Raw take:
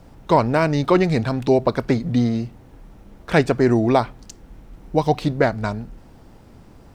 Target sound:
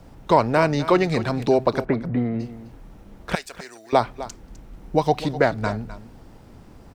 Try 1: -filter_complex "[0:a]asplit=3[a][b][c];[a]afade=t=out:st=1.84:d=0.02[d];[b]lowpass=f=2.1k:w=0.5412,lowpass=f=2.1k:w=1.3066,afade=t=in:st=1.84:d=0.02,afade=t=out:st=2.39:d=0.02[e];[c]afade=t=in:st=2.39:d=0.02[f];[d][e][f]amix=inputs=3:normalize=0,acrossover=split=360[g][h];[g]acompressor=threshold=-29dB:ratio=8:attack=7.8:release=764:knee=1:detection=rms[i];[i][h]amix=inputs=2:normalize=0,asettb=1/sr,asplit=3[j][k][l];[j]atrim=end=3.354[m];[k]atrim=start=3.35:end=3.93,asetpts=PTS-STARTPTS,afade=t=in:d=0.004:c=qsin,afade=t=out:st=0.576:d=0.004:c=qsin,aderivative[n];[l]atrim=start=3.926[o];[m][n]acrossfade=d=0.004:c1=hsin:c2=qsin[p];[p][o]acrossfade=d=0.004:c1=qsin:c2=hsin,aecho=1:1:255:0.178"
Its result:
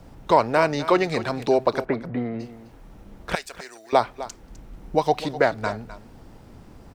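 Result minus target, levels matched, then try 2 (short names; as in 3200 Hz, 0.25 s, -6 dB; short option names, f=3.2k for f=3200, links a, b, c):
compressor: peak gain reduction +7.5 dB
-filter_complex "[0:a]asplit=3[a][b][c];[a]afade=t=out:st=1.84:d=0.02[d];[b]lowpass=f=2.1k:w=0.5412,lowpass=f=2.1k:w=1.3066,afade=t=in:st=1.84:d=0.02,afade=t=out:st=2.39:d=0.02[e];[c]afade=t=in:st=2.39:d=0.02[f];[d][e][f]amix=inputs=3:normalize=0,acrossover=split=360[g][h];[g]acompressor=threshold=-20.5dB:ratio=8:attack=7.8:release=764:knee=1:detection=rms[i];[i][h]amix=inputs=2:normalize=0,asettb=1/sr,asplit=3[j][k][l];[j]atrim=end=3.354[m];[k]atrim=start=3.35:end=3.93,asetpts=PTS-STARTPTS,afade=t=in:d=0.004:c=qsin,afade=t=out:st=0.576:d=0.004:c=qsin,aderivative[n];[l]atrim=start=3.926[o];[m][n]acrossfade=d=0.004:c1=hsin:c2=qsin[p];[p][o]acrossfade=d=0.004:c1=qsin:c2=hsin,aecho=1:1:255:0.178"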